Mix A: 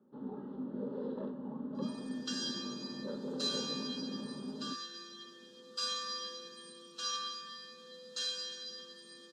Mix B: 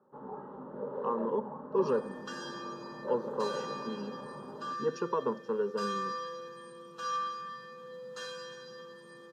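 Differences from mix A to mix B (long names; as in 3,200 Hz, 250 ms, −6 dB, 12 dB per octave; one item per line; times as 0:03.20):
speech: unmuted
second sound: remove meter weighting curve A
master: add graphic EQ with 10 bands 125 Hz +4 dB, 250 Hz −11 dB, 500 Hz +5 dB, 1,000 Hz +11 dB, 2,000 Hz +5 dB, 4,000 Hz −11 dB, 8,000 Hz −7 dB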